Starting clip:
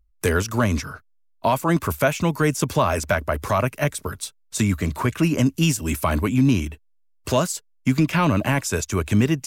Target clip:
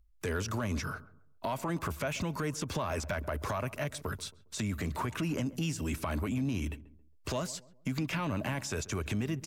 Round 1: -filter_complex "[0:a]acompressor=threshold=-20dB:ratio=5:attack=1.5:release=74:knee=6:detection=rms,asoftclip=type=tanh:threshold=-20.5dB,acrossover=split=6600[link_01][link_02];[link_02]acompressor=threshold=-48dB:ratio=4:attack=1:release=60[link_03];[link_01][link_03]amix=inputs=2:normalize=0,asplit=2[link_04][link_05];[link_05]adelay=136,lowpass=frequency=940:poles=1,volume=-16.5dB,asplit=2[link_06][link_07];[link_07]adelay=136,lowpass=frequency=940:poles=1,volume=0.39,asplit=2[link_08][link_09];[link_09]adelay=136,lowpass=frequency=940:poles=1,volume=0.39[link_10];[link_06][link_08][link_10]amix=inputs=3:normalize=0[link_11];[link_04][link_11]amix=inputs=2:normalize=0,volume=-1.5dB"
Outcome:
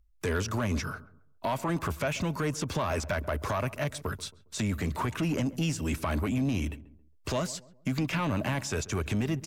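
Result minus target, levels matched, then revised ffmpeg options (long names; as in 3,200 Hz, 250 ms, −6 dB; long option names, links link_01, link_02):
downward compressor: peak gain reduction −5.5 dB
-filter_complex "[0:a]acompressor=threshold=-27dB:ratio=5:attack=1.5:release=74:knee=6:detection=rms,asoftclip=type=tanh:threshold=-20.5dB,acrossover=split=6600[link_01][link_02];[link_02]acompressor=threshold=-48dB:ratio=4:attack=1:release=60[link_03];[link_01][link_03]amix=inputs=2:normalize=0,asplit=2[link_04][link_05];[link_05]adelay=136,lowpass=frequency=940:poles=1,volume=-16.5dB,asplit=2[link_06][link_07];[link_07]adelay=136,lowpass=frequency=940:poles=1,volume=0.39,asplit=2[link_08][link_09];[link_09]adelay=136,lowpass=frequency=940:poles=1,volume=0.39[link_10];[link_06][link_08][link_10]amix=inputs=3:normalize=0[link_11];[link_04][link_11]amix=inputs=2:normalize=0,volume=-1.5dB"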